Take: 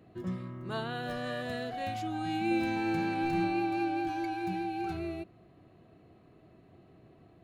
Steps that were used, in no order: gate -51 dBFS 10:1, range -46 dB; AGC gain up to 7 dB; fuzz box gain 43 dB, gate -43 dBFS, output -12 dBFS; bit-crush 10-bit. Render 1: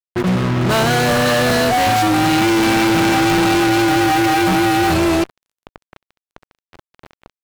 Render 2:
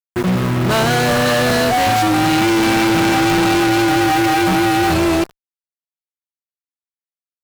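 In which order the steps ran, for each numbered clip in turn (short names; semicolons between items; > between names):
AGC > fuzz box > gate > bit-crush; gate > AGC > bit-crush > fuzz box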